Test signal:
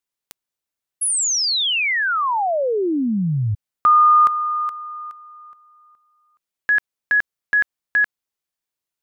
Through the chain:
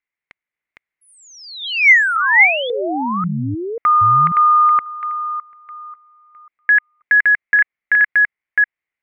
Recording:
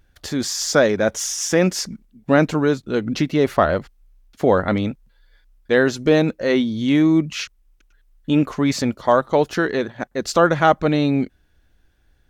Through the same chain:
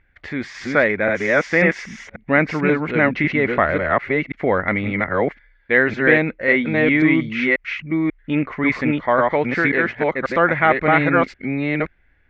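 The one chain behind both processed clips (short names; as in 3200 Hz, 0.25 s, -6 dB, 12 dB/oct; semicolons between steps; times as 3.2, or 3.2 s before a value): reverse delay 0.54 s, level -1 dB; synth low-pass 2100 Hz, resonance Q 7.2; gain -3.5 dB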